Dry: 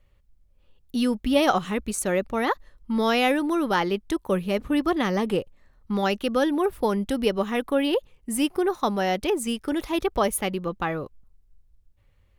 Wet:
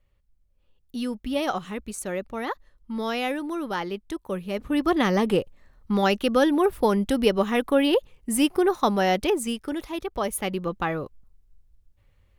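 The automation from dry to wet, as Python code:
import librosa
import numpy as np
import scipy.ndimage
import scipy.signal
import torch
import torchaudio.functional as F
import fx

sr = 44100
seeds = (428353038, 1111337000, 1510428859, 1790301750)

y = fx.gain(x, sr, db=fx.line((4.43, -6.0), (4.97, 2.5), (9.18, 2.5), (10.05, -7.0), (10.58, 0.5)))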